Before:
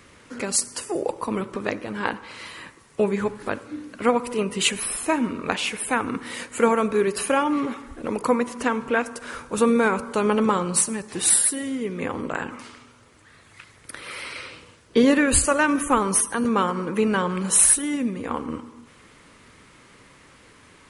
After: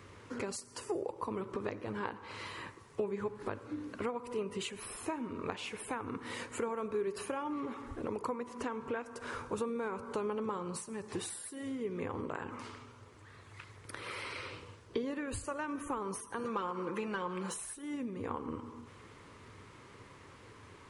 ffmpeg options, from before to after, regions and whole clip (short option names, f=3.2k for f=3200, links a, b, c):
-filter_complex "[0:a]asettb=1/sr,asplit=3[a][b][c];[a]atrim=end=16.394[d];[b]atrim=start=16.39:end=17.54,asetpts=PTS-STARTPTS,afade=t=in:d=0.004:c=qsin,afade=t=out:st=1.146:d=0.004:c=qsin,aecho=1:1:5.8:0.54,atrim=end_sample=50715,asplit=2[e][f];[f]highpass=f=720:p=1,volume=10dB,asoftclip=type=tanh:threshold=-7.5dB[g];[e][g]amix=inputs=2:normalize=0,lowpass=f=6.9k:p=1,volume=-6dB[h];[c]atrim=start=17.536[i];[d][h]acrossfade=d=0.004:c1=hsin:c2=qsin[j];[j][i]acrossfade=d=0.004:c1=qsin:c2=hsin,acompressor=threshold=-32dB:ratio=6,equalizer=f=100:t=o:w=0.67:g=12,equalizer=f=400:t=o:w=0.67:g=7,equalizer=f=1k:t=o:w=0.67:g=6,equalizer=f=10k:t=o:w=0.67:g=-5,volume=-7dB"